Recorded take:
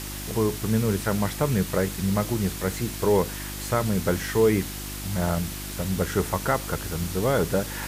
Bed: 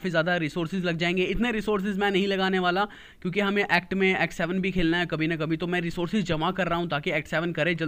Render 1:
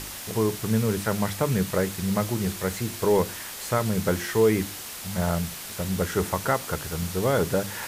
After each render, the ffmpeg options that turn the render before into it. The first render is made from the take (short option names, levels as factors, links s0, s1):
-af "bandreject=f=50:t=h:w=4,bandreject=f=100:t=h:w=4,bandreject=f=150:t=h:w=4,bandreject=f=200:t=h:w=4,bandreject=f=250:t=h:w=4,bandreject=f=300:t=h:w=4,bandreject=f=350:t=h:w=4"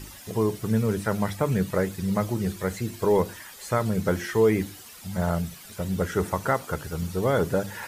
-af "afftdn=nr=12:nf=-38"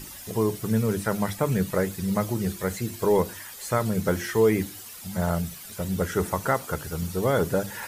-af "highshelf=f=7300:g=6.5,bandreject=f=50:t=h:w=6,bandreject=f=100:t=h:w=6"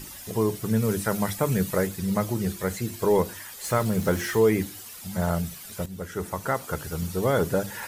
-filter_complex "[0:a]asettb=1/sr,asplit=3[s0][s1][s2];[s0]atrim=end=0.824[s3];[s1]atrim=start=0.82:end=1.87,asetpts=PTS-STARTPTS,afade=t=in:d=0.004:c=qsin,afade=t=out:st=1.046:d=0.004:c=qsin,highshelf=f=5500:g=5[s4];[s2]atrim=start=1.866[s5];[s3][s4]acrossfade=d=0.004:c1=hsin:c2=qsin[s6];[s6][s5]acrossfade=d=0.004:c1=qsin:c2=hsin,asettb=1/sr,asplit=3[s7][s8][s9];[s7]atrim=end=3.644[s10];[s8]atrim=start=3.64:end=4.39,asetpts=PTS-STARTPTS,afade=t=in:d=0.004:c=qsin,afade=t=out:st=0.746:d=0.004:c=qsin,aeval=exprs='val(0)+0.5*0.015*sgn(val(0))':c=same[s11];[s9]atrim=start=4.386[s12];[s10][s11]acrossfade=d=0.004:c1=hsin:c2=qsin[s13];[s13][s12]acrossfade=d=0.004:c1=qsin:c2=hsin,asplit=2[s14][s15];[s14]atrim=end=5.86,asetpts=PTS-STARTPTS,afade=t=out:st=5.856:d=0.004:c=hsin:silence=0.237137[s16];[s15]atrim=start=5.86,asetpts=PTS-STARTPTS,afade=t=in:d=0.97:silence=0.237137[s17];[s16][s17]concat=n=2:v=0:a=1"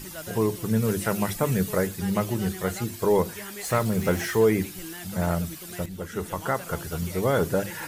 -filter_complex "[1:a]volume=0.15[s0];[0:a][s0]amix=inputs=2:normalize=0"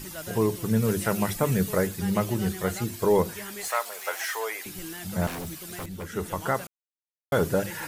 -filter_complex "[0:a]asettb=1/sr,asplit=3[s0][s1][s2];[s0]atrim=end=3.684[s3];[s1]atrim=start=3.68:end=4.66,asetpts=PTS-STARTPTS,afade=t=in:d=0.004:c=qsin,afade=t=out:st=0.976:d=0.004:c=qsin,highpass=f=670:w=0.5412,highpass=f=670:w=1.3066[s4];[s2]atrim=start=4.656[s5];[s3][s4]acrossfade=d=0.004:c1=hsin:c2=qsin[s6];[s6][s5]acrossfade=d=0.004:c1=qsin:c2=hsin,asettb=1/sr,asplit=3[s7][s8][s9];[s7]atrim=end=5.274[s10];[s8]atrim=start=5.27:end=6.12,asetpts=PTS-STARTPTS,afade=t=in:d=0.004:c=qsin,afade=t=out:st=0.846:d=0.004:c=qsin,aeval=exprs='0.0335*(abs(mod(val(0)/0.0335+3,4)-2)-1)':c=same[s11];[s9]atrim=start=6.116[s12];[s10][s11]acrossfade=d=0.004:c1=hsin:c2=qsin[s13];[s13][s12]acrossfade=d=0.004:c1=qsin:c2=hsin,asplit=3[s14][s15][s16];[s14]atrim=end=6.67,asetpts=PTS-STARTPTS,afade=t=out:st=6.666:d=0.004:c=hsin[s17];[s15]atrim=start=6.67:end=7.32,asetpts=PTS-STARTPTS,volume=0[s18];[s16]atrim=start=7.32,asetpts=PTS-STARTPTS,afade=t=in:d=0.004:c=hsin[s19];[s17][s18][s19]concat=n=3:v=0:a=1"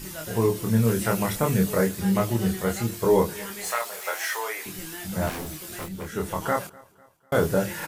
-filter_complex "[0:a]asplit=2[s0][s1];[s1]adelay=26,volume=0.708[s2];[s0][s2]amix=inputs=2:normalize=0,aecho=1:1:249|498|747:0.0631|0.0297|0.0139"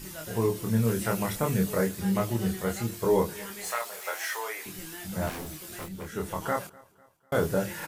-af "volume=0.631"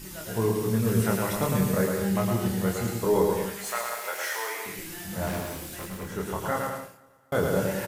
-af "aecho=1:1:110|187|240.9|278.6|305:0.631|0.398|0.251|0.158|0.1"